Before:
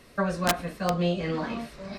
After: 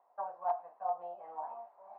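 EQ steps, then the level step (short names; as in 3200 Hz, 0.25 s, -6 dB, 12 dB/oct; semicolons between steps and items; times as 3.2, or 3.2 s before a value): Butterworth band-pass 820 Hz, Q 3.5; 0.0 dB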